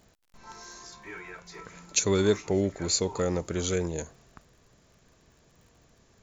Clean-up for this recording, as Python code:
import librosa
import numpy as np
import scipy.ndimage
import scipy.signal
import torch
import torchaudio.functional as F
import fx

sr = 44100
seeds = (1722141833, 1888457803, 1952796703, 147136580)

y = fx.fix_declick_ar(x, sr, threshold=6.5)